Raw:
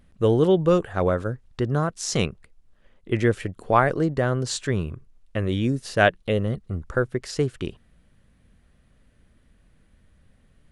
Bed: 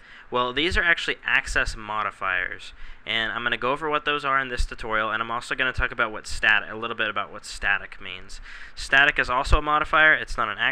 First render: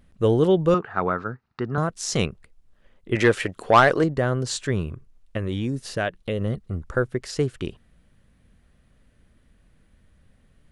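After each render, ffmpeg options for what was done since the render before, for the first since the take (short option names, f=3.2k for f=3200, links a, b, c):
-filter_complex "[0:a]asettb=1/sr,asplit=3[a][b][c];[a]atrim=end=0.744[d];[b]atrim=start=0.74:end=1.78,asetpts=PTS-STARTPTS,afade=t=in:d=0.004:c=qsin,afade=t=out:st=1.036:d=0.004:c=qsin,highpass=160,equalizer=f=310:t=q:w=4:g=-4,equalizer=f=550:t=q:w=4:g=-10,equalizer=f=880:t=q:w=4:g=4,equalizer=f=1.3k:t=q:w=4:g=8,equalizer=f=3.3k:t=q:w=4:g=-10,lowpass=f=4.6k:w=0.5412,lowpass=f=4.6k:w=1.3066[e];[c]atrim=start=1.776[f];[d][e]acrossfade=d=0.004:c1=hsin:c2=qsin[g];[g][f]acrossfade=d=0.004:c1=qsin:c2=hsin,asettb=1/sr,asplit=3[h][i][j];[h]atrim=end=3.154[k];[i]atrim=start=3.15:end=4.04,asetpts=PTS-STARTPTS,afade=t=in:d=0.004:c=qsin,afade=t=out:st=0.886:d=0.004:c=qsin,asplit=2[l][m];[m]highpass=f=720:p=1,volume=15dB,asoftclip=type=tanh:threshold=-4dB[n];[l][n]amix=inputs=2:normalize=0,lowpass=f=6.9k:p=1,volume=-6dB[o];[j]atrim=start=4.036[p];[k][o]acrossfade=d=0.004:c1=hsin:c2=qsin[q];[q][p]acrossfade=d=0.004:c1=qsin:c2=hsin,asettb=1/sr,asplit=3[r][s][t];[r]atrim=end=5.374[u];[s]atrim=start=5.37:end=6.41,asetpts=PTS-STARTPTS,afade=t=in:d=0.004:c=qsin,afade=t=out:st=1.036:d=0.004:c=qsin,acompressor=threshold=-22dB:ratio=3:attack=3.2:release=140:knee=1:detection=peak[v];[t]atrim=start=6.406[w];[u][v]acrossfade=d=0.004:c1=hsin:c2=qsin[x];[x][w]acrossfade=d=0.004:c1=qsin:c2=hsin"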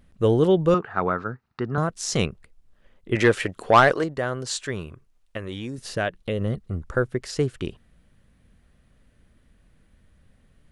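-filter_complex "[0:a]asettb=1/sr,asplit=3[a][b][c];[a]atrim=end=3.924[d];[b]atrim=start=3.92:end=5.78,asetpts=PTS-STARTPTS,afade=t=in:d=0.004:c=qsin,afade=t=out:st=1.856:d=0.004:c=qsin,lowshelf=f=360:g=-9.5[e];[c]atrim=start=5.776[f];[d][e]acrossfade=d=0.004:c1=hsin:c2=qsin[g];[g][f]acrossfade=d=0.004:c1=qsin:c2=hsin"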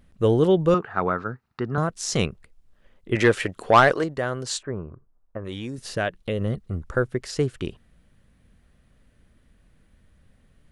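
-filter_complex "[0:a]asplit=3[a][b][c];[a]afade=t=out:st=4.61:d=0.02[d];[b]lowpass=f=1.3k:w=0.5412,lowpass=f=1.3k:w=1.3066,afade=t=in:st=4.61:d=0.02,afade=t=out:st=5.44:d=0.02[e];[c]afade=t=in:st=5.44:d=0.02[f];[d][e][f]amix=inputs=3:normalize=0"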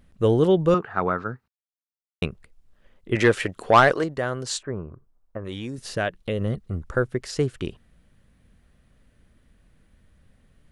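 -filter_complex "[0:a]asplit=3[a][b][c];[a]atrim=end=1.48,asetpts=PTS-STARTPTS,afade=t=out:st=1.476:d=0.004:c=hsin[d];[b]atrim=start=1.48:end=2.22,asetpts=PTS-STARTPTS,volume=0[e];[c]atrim=start=2.22,asetpts=PTS-STARTPTS,afade=t=in:d=0.004:c=hsin[f];[d][e][f]concat=n=3:v=0:a=1"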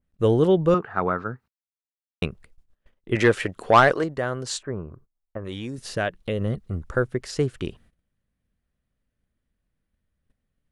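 -af "agate=range=-19dB:threshold=-51dB:ratio=16:detection=peak,adynamicequalizer=threshold=0.0126:dfrequency=2400:dqfactor=0.7:tfrequency=2400:tqfactor=0.7:attack=5:release=100:ratio=0.375:range=2.5:mode=cutabove:tftype=highshelf"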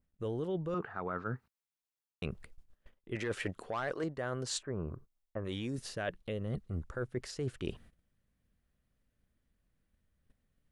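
-af "alimiter=limit=-14dB:level=0:latency=1:release=99,areverse,acompressor=threshold=-34dB:ratio=6,areverse"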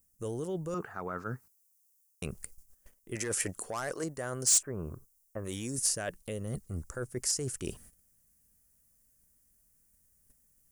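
-af "aexciter=amount=10.7:drive=6.4:freq=5.5k,asoftclip=type=hard:threshold=-20dB"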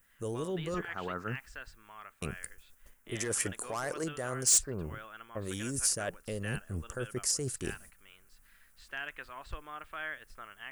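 -filter_complex "[1:a]volume=-23dB[a];[0:a][a]amix=inputs=2:normalize=0"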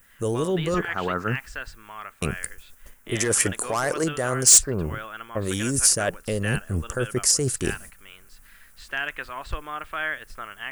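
-af "volume=11dB"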